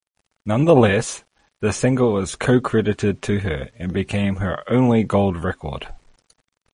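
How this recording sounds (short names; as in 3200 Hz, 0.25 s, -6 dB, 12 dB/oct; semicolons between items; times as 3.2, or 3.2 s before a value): a quantiser's noise floor 10-bit, dither none; MP3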